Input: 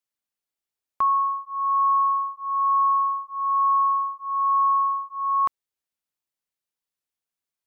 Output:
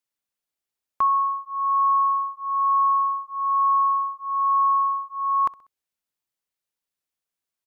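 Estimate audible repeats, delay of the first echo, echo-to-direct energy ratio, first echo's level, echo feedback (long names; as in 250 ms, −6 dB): 2, 64 ms, −20.5 dB, −21.5 dB, 43%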